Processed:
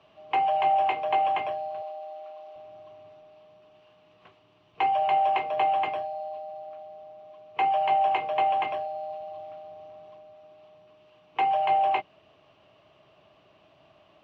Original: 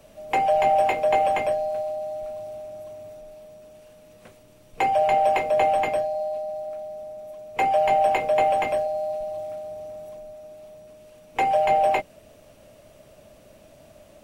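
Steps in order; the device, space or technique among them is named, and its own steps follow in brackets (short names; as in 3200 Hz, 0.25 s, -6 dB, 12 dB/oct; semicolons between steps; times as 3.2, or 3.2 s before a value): guitar cabinet (speaker cabinet 110–4300 Hz, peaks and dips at 230 Hz -9 dB, 370 Hz +3 dB, 540 Hz -9 dB, 770 Hz +5 dB, 1100 Hz +10 dB, 2900 Hz +8 dB); 1.82–2.56 HPF 370 Hz 12 dB/oct; gain -7 dB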